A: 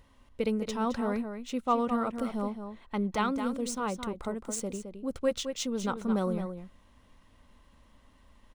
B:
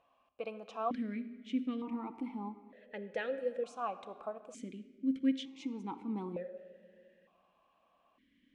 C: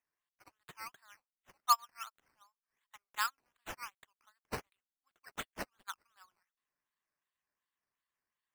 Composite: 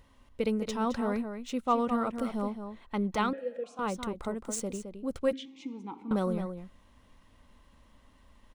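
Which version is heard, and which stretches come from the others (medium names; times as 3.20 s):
A
3.33–3.79 s: from B
5.33–6.11 s: from B
not used: C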